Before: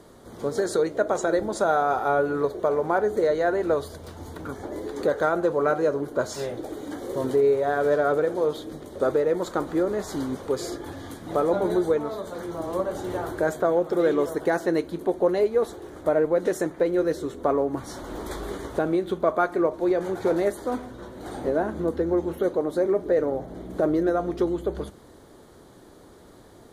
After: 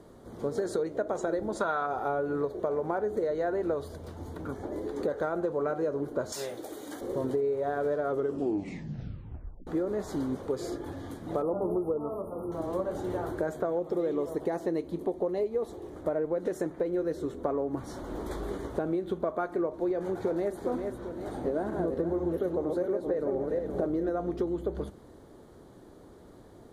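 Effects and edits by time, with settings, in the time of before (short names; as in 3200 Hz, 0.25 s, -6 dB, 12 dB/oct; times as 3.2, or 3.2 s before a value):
1.61–1.86 spectral gain 890–4700 Hz +10 dB
6.32–7.01 tilt +3.5 dB/oct
8.05 tape stop 1.62 s
11.42–12.52 brick-wall FIR band-stop 1400–9100 Hz
13.79–15.96 bell 1500 Hz -9 dB 0.31 oct
20.03–20.58 echo throw 0.4 s, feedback 45%, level -9 dB
21.24–24.09 regenerating reverse delay 0.235 s, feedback 46%, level -4 dB
whole clip: tilt shelf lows +4 dB, about 1100 Hz; compressor, threshold -21 dBFS; gain -5 dB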